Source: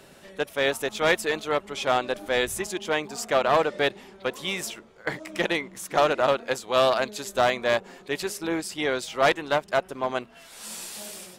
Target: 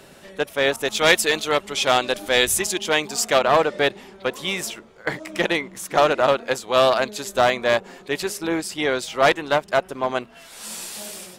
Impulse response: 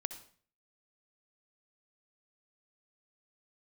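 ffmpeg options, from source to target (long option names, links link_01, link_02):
-filter_complex "[0:a]asettb=1/sr,asplit=3[link_01][link_02][link_03];[link_01]atrim=end=0.764[link_04];[link_02]atrim=start=0.76:end=3.39,asetpts=PTS-STARTPTS,afade=type=in:duration=0.004:curve=qsin,afade=type=out:start_time=2.626:duration=0.004:curve=qsin,adynamicequalizer=threshold=0.0112:dfrequency=2300:dqfactor=0.7:tfrequency=2300:tqfactor=0.7:attack=5:release=100:ratio=0.375:range=4:mode=boostabove:tftype=highshelf[link_05];[link_03]atrim=start=3.386[link_06];[link_04][link_05]acrossfade=duration=0.004:curve1=hsin:curve2=qsin[link_07];[link_07][link_06]acrossfade=duration=0.004:curve1=qsin:curve2=hsin,volume=4dB"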